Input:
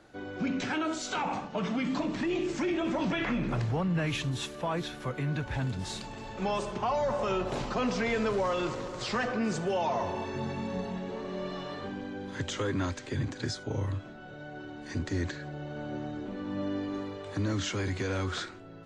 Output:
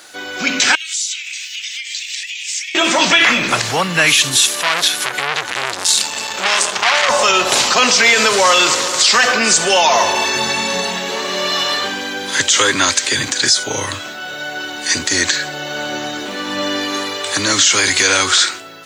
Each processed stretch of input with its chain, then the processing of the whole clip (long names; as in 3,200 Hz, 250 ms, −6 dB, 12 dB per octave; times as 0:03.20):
0:00.75–0:02.75: Butterworth high-pass 2,000 Hz 48 dB per octave + notch filter 4,300 Hz, Q 25 + downward compressor 12 to 1, threshold −51 dBFS
0:04.42–0:07.09: high-pass filter 55 Hz + saturating transformer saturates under 1,800 Hz
whole clip: first difference; automatic gain control gain up to 5 dB; boost into a limiter +32.5 dB; level −1 dB